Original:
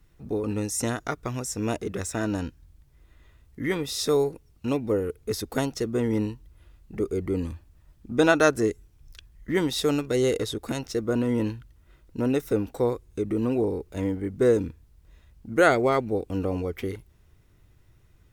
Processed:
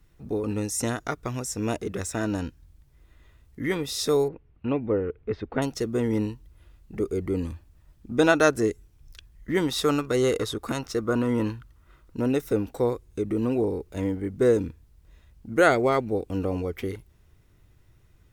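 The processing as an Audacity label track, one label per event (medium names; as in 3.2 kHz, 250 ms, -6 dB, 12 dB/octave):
4.280000	5.620000	low-pass 2.7 kHz 24 dB/octave
9.680000	12.170000	peaking EQ 1.2 kHz +9 dB 0.62 oct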